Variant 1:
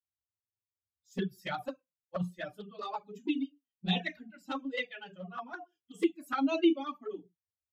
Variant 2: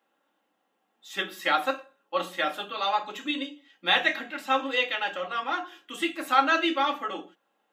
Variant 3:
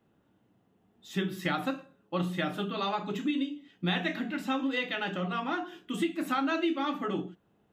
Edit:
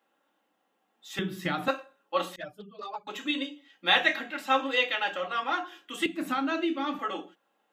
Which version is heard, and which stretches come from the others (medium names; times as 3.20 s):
2
1.19–1.68 s: from 3
2.36–3.07 s: from 1
6.06–6.99 s: from 3